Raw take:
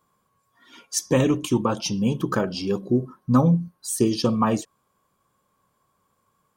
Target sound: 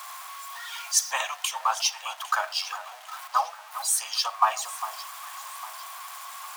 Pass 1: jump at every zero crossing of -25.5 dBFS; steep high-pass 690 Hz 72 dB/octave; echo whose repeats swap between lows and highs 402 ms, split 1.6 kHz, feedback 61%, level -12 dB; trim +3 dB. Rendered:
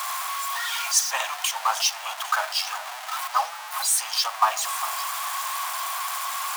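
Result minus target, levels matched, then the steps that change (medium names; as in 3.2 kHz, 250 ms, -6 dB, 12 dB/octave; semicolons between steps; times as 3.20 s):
jump at every zero crossing: distortion +10 dB
change: jump at every zero crossing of -36.5 dBFS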